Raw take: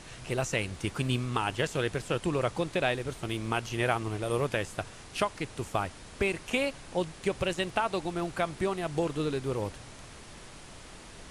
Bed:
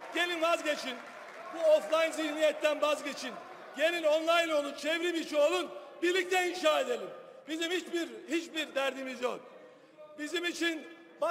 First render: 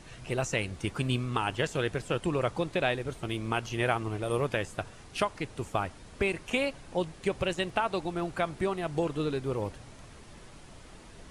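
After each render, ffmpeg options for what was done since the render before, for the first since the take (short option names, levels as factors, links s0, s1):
-af "afftdn=nr=6:nf=-48"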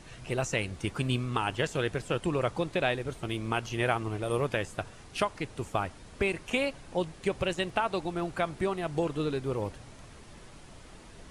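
-af anull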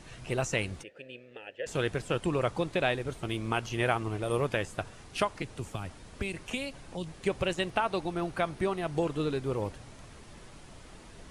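-filter_complex "[0:a]asplit=3[s0][s1][s2];[s0]afade=t=out:st=0.82:d=0.02[s3];[s1]asplit=3[s4][s5][s6];[s4]bandpass=f=530:t=q:w=8,volume=1[s7];[s5]bandpass=f=1840:t=q:w=8,volume=0.501[s8];[s6]bandpass=f=2480:t=q:w=8,volume=0.355[s9];[s7][s8][s9]amix=inputs=3:normalize=0,afade=t=in:st=0.82:d=0.02,afade=t=out:st=1.66:d=0.02[s10];[s2]afade=t=in:st=1.66:d=0.02[s11];[s3][s10][s11]amix=inputs=3:normalize=0,asettb=1/sr,asplit=3[s12][s13][s14];[s12]atrim=end=5.424[s15];[s13]atrim=start=5.42:end=7.14,asetpts=PTS-STARTPTS,afade=t=in:d=0.004:c=qsin,afade=t=out:st=1.716:d=0.004:c=qsin,acrossover=split=240|3000[s16][s17][s18];[s17]acompressor=threshold=0.0126:ratio=6:attack=3.2:release=140:knee=2.83:detection=peak[s19];[s16][s19][s18]amix=inputs=3:normalize=0[s20];[s14]atrim=start=7.136[s21];[s15][s20]acrossfade=d=0.004:c1=hsin:c2=qsin[s22];[s22][s21]acrossfade=d=0.004:c1=qsin:c2=hsin,asettb=1/sr,asplit=3[s23][s24][s25];[s23]atrim=end=7.704[s26];[s24]atrim=start=7.7:end=8.95,asetpts=PTS-STARTPTS,afade=t=in:d=0.004:c=qsin,afade=t=out:st=1.246:d=0.004:c=qsin,bandreject=f=7400:w=11[s27];[s25]atrim=start=8.946[s28];[s26][s27]acrossfade=d=0.004:c1=hsin:c2=qsin[s29];[s29][s28]acrossfade=d=0.004:c1=qsin:c2=hsin"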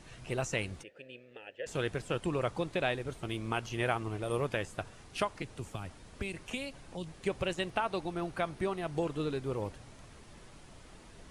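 -af "volume=0.668"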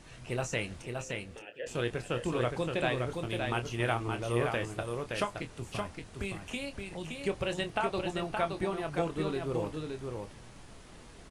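-filter_complex "[0:a]asplit=2[s0][s1];[s1]adelay=25,volume=0.376[s2];[s0][s2]amix=inputs=2:normalize=0,aecho=1:1:570:0.596"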